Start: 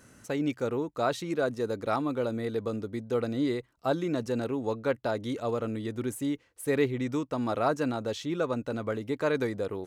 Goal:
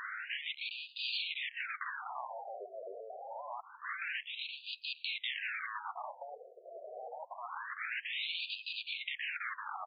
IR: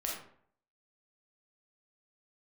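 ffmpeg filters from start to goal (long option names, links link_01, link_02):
-filter_complex "[0:a]asplit=2[link_01][link_02];[link_02]highpass=frequency=720:poles=1,volume=33dB,asoftclip=type=tanh:threshold=-14dB[link_03];[link_01][link_03]amix=inputs=2:normalize=0,lowpass=frequency=4100:poles=1,volume=-6dB,asettb=1/sr,asplit=3[link_04][link_05][link_06];[link_04]atrim=end=4.234[link_07];[link_05]atrim=start=4.23:end=4.73,asetpts=PTS-STARTPTS,afade=type=in:duration=0.004:curve=qsin,afade=type=out:start_time=0.496:duration=0.004:curve=qsin,asuperstop=centerf=1600:order=4:qfactor=0.9[link_08];[link_06]atrim=start=4.726[link_09];[link_07][link_08]acrossfade=duration=0.004:curve1=hsin:curve2=qsin[link_10];[link_10][link_09]acrossfade=duration=0.004:curve1=qsin:curve2=hsin,afftfilt=real='re*lt(hypot(re,im),0.112)':imag='im*lt(hypot(re,im),0.112)':win_size=1024:overlap=0.75,aecho=1:1:559|1118|1677:0.1|0.042|0.0176,afftfilt=real='re*between(b*sr/1024,500*pow(3500/500,0.5+0.5*sin(2*PI*0.26*pts/sr))/1.41,500*pow(3500/500,0.5+0.5*sin(2*PI*0.26*pts/sr))*1.41)':imag='im*between(b*sr/1024,500*pow(3500/500,0.5+0.5*sin(2*PI*0.26*pts/sr))/1.41,500*pow(3500/500,0.5+0.5*sin(2*PI*0.26*pts/sr))*1.41)':win_size=1024:overlap=0.75,volume=-2.5dB"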